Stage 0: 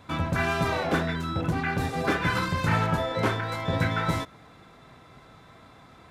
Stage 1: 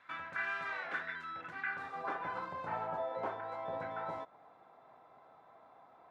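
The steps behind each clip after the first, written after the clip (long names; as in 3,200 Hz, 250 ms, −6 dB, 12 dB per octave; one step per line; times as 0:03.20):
in parallel at 0 dB: downward compressor, threshold −32 dBFS, peak gain reduction 12 dB
on the sum: band-pass filter sweep 1,700 Hz → 770 Hz, 0:01.62–0:02.29
level −7.5 dB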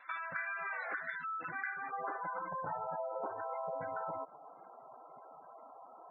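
gate on every frequency bin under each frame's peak −15 dB strong
downward compressor, threshold −43 dBFS, peak gain reduction 10 dB
level +6.5 dB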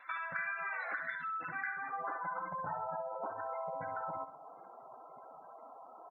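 dynamic equaliser 410 Hz, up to −7 dB, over −57 dBFS, Q 1.7
on a send: repeating echo 65 ms, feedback 43%, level −12 dB
on the sum: level +1 dB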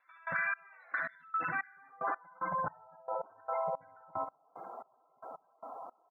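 in parallel at +2 dB: brickwall limiter −33.5 dBFS, peak gain reduction 8.5 dB
on the sum: gate pattern "..xx...x" 112 BPM −24 dB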